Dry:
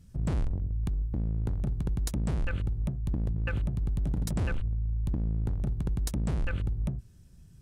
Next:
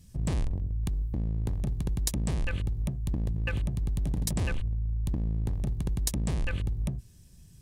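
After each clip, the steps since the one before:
high-shelf EQ 2,400 Hz +9 dB
notch filter 1,400 Hz, Q 5.2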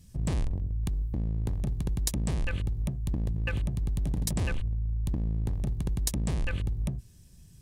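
no processing that can be heard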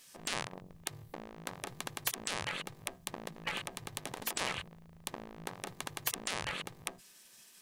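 drawn EQ curve 110 Hz 0 dB, 250 Hz −8 dB, 490 Hz +4 dB, 1,300 Hz +15 dB, 9,500 Hz +10 dB
gate on every frequency bin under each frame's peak −15 dB weak
level −3 dB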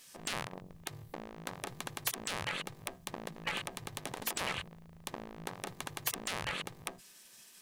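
soft clipping −22 dBFS, distortion −14 dB
level +1.5 dB

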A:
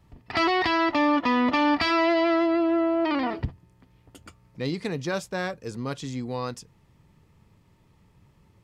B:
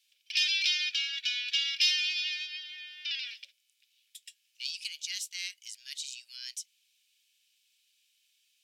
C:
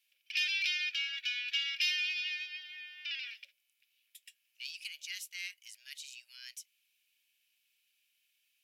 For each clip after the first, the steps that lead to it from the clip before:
inverse Chebyshev high-pass filter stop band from 680 Hz, stop band 60 dB; frequency shifter +480 Hz; level +4.5 dB
flat-topped bell 5,400 Hz −9 dB

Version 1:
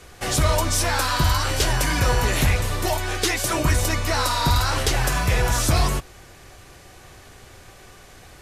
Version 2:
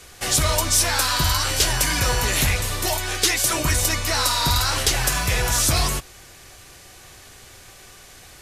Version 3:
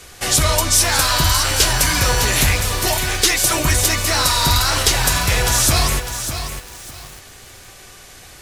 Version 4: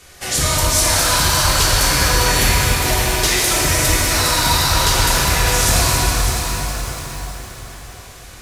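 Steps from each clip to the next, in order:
high-shelf EQ 2,200 Hz +9.5 dB; level −3 dB
feedback echo at a low word length 602 ms, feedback 35%, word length 6 bits, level −8.5 dB; level +4 dB
dense smooth reverb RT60 4.9 s, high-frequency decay 0.75×, DRR −6 dB; level −5.5 dB

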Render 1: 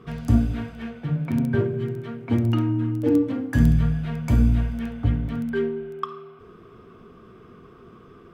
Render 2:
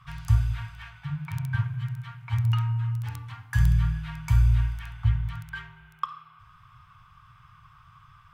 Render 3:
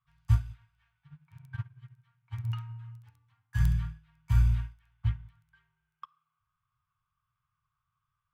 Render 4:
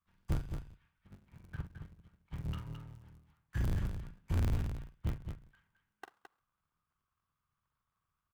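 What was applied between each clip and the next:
elliptic band-stop filter 130–930 Hz, stop band 40 dB
expander for the loud parts 2.5 to 1, over −35 dBFS
sub-harmonics by changed cycles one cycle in 3, inverted; soft clipping −21.5 dBFS, distortion −12 dB; on a send: multi-tap delay 43/216 ms −10.5/−7.5 dB; on the sum: level −4.5 dB

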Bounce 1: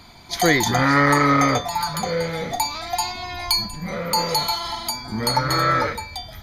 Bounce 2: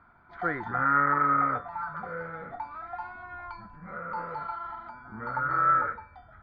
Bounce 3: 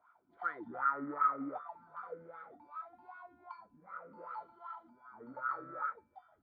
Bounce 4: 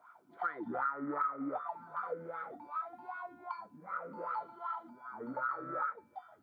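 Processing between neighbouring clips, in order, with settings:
transistor ladder low-pass 1,500 Hz, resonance 80%; level −3.5 dB
high shelf with overshoot 2,300 Hz +11 dB, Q 1.5; LFO wah 2.6 Hz 250–1,300 Hz, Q 6.1; level +1 dB
high-pass filter 110 Hz 24 dB per octave; downward compressor 4 to 1, threshold −42 dBFS, peak gain reduction 14.5 dB; level +8.5 dB

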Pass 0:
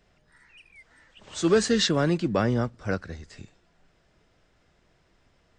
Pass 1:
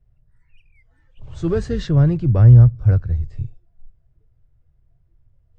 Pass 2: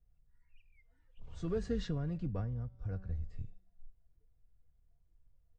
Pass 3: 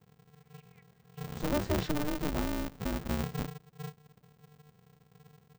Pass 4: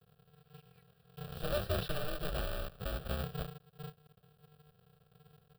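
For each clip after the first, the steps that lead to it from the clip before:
spectral tilt −4 dB per octave; noise reduction from a noise print of the clip's start 12 dB; low shelf with overshoot 160 Hz +8 dB, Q 3; level −4.5 dB
tuned comb filter 190 Hz, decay 0.84 s, harmonics all, mix 50%; downward compressor 5 to 1, threshold −24 dBFS, peak gain reduction 12 dB; comb filter 4.2 ms, depth 55%; level −7.5 dB
ring modulator with a square carrier 150 Hz; level +4.5 dB
one scale factor per block 3 bits; phaser with its sweep stopped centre 1,400 Hz, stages 8; level −1 dB

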